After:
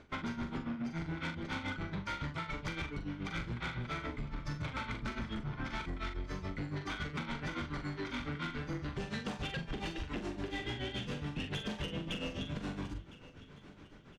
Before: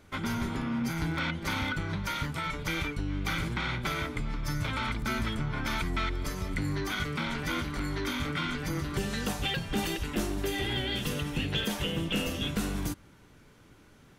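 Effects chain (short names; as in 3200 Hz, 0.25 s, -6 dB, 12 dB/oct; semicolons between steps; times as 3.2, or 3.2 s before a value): air absorption 130 m; notches 50/100 Hz; tremolo 7.1 Hz, depth 96%; soft clip -31 dBFS, distortion -13 dB; doubler 42 ms -7 dB; on a send: feedback echo 1.008 s, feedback 40%, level -23 dB; on the sum: compressor, threshold -39 dBFS, peak gain reduction 7 dB; gain +3.5 dB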